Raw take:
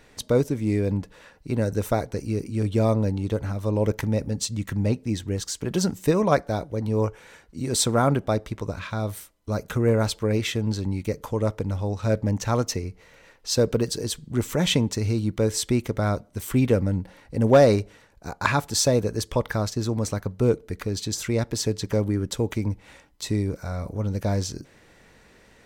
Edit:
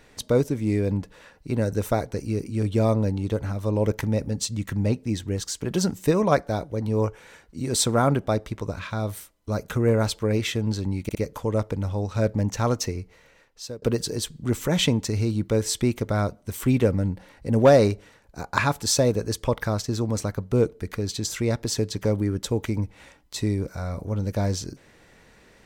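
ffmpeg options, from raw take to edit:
-filter_complex "[0:a]asplit=4[a][b][c][d];[a]atrim=end=11.092[e];[b]atrim=start=11.028:end=11.092[f];[c]atrim=start=11.028:end=13.7,asetpts=PTS-STARTPTS,afade=t=out:st=1.842:d=0.83:silence=0.0630957[g];[d]atrim=start=13.7,asetpts=PTS-STARTPTS,afade=t=in:d=0.004:c=hsin:silence=0.0630957[h];[e][f]acrossfade=d=0.004:c1=hsin:c2=hsin[i];[g][h]concat=n=2:v=0:a=1[j];[i][j]acrossfade=d=0.004:c1=hsin:c2=hsin"

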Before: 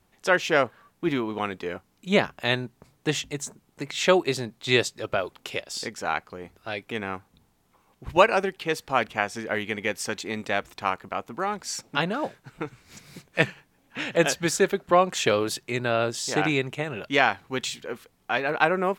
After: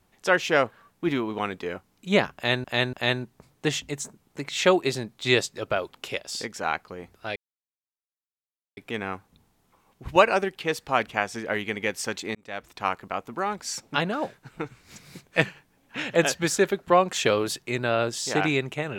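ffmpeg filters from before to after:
-filter_complex "[0:a]asplit=5[a][b][c][d][e];[a]atrim=end=2.642[f];[b]atrim=start=2.348:end=2.642[g];[c]atrim=start=2.348:end=6.78,asetpts=PTS-STARTPTS,afade=t=out:st=4.428:d=0.004:c=hsin,apad=pad_dur=1.41[h];[d]atrim=start=6.78:end=10.36,asetpts=PTS-STARTPTS,afade=t=in:d=0.004:c=hsin,afade=t=out:st=3.576:d=0.004:c=hsin[i];[e]atrim=start=10.36,asetpts=PTS-STARTPTS,afade=t=in:d=0.54[j];[f][g]acrossfade=d=0.004:c1=hsin:c2=hsin[k];[h][i][j]concat=n=3:v=0:a=1[l];[k][l]acrossfade=d=0.004:c1=hsin:c2=hsin"

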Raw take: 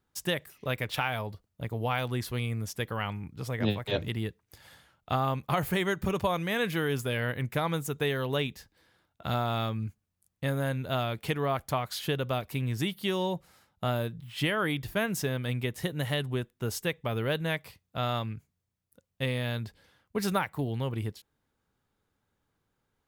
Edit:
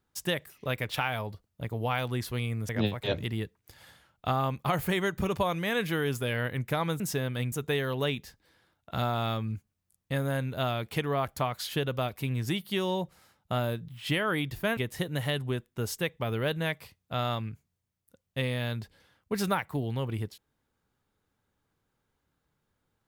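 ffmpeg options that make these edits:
-filter_complex "[0:a]asplit=5[a][b][c][d][e];[a]atrim=end=2.692[f];[b]atrim=start=3.528:end=7.842[g];[c]atrim=start=15.088:end=15.612[h];[d]atrim=start=7.838:end=15.092[i];[e]atrim=start=15.608[j];[f][g]acrossfade=d=0.004:c1=hsin:c2=hsin[k];[k][h]acrossfade=d=0.004:c1=hsin:c2=hsin[l];[l][i]acrossfade=d=0.004:c1=hsin:c2=hsin[m];[m][j]acrossfade=d=0.004:c1=hsin:c2=hsin"

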